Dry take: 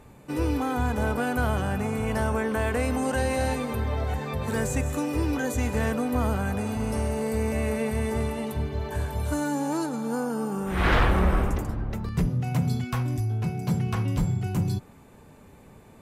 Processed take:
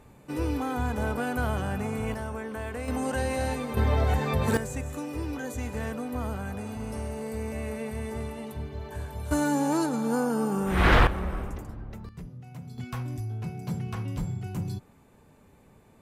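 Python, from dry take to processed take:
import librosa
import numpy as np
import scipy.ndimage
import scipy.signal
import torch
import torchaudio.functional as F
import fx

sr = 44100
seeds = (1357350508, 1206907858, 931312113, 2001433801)

y = fx.gain(x, sr, db=fx.steps((0.0, -3.0), (2.14, -9.0), (2.88, -3.0), (3.77, 4.0), (4.57, -7.0), (9.31, 2.0), (11.07, -9.5), (12.09, -17.0), (12.78, -6.5)))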